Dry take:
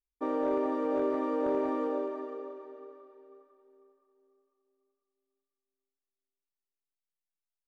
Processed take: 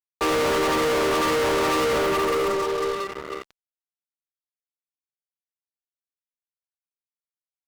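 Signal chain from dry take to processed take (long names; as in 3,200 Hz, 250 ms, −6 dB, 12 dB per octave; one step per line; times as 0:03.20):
Chebyshev high-pass with heavy ripple 310 Hz, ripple 9 dB
fuzz pedal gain 53 dB, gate −59 dBFS
leveller curve on the samples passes 2
level −8.5 dB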